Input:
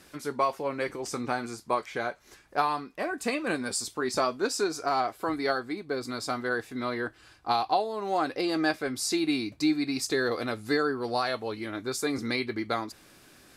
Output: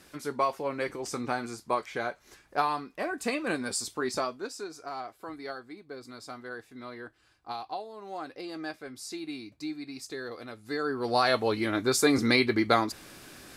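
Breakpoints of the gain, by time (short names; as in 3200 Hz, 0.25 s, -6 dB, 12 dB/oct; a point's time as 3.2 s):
4.06 s -1 dB
4.55 s -11 dB
10.62 s -11 dB
10.93 s -1 dB
11.36 s +6.5 dB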